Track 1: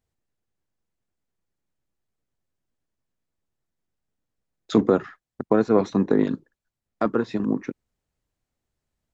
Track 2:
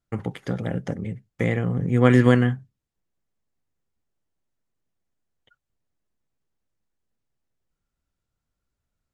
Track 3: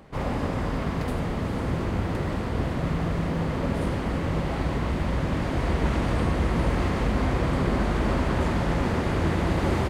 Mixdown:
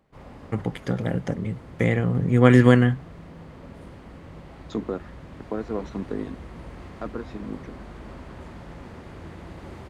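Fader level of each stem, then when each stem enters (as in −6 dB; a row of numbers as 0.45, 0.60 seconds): −11.0, +1.5, −16.5 decibels; 0.00, 0.40, 0.00 seconds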